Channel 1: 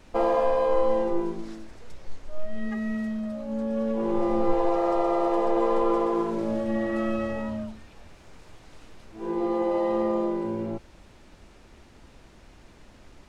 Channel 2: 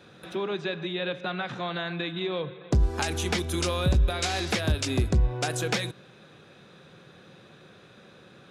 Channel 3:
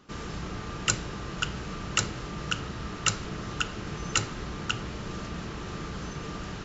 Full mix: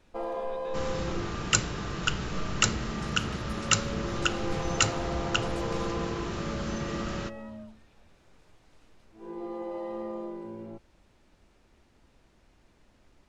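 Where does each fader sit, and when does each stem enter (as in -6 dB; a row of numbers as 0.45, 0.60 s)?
-11.0, -19.5, +2.0 dB; 0.00, 0.00, 0.65 s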